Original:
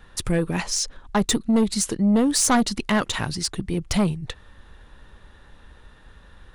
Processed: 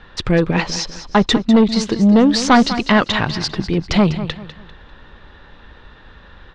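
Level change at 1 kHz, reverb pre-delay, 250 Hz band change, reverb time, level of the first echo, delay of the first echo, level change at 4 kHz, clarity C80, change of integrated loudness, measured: +8.5 dB, no reverb audible, +7.5 dB, no reverb audible, −12.5 dB, 198 ms, +6.5 dB, no reverb audible, +6.5 dB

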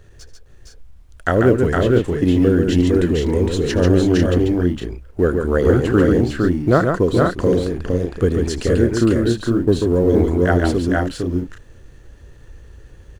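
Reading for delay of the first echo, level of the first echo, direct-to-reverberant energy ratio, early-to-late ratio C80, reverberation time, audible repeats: 79 ms, −17.5 dB, no reverb audible, no reverb audible, no reverb audible, 4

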